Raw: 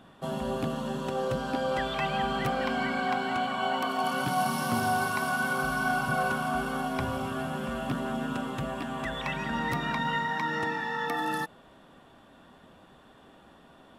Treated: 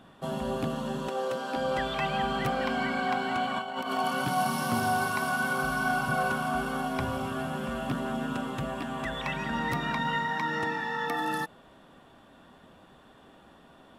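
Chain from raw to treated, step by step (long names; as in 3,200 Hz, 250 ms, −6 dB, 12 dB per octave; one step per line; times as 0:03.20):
0:01.08–0:01.56: high-pass filter 320 Hz 12 dB per octave
0:03.56–0:03.98: compressor whose output falls as the input rises −32 dBFS, ratio −0.5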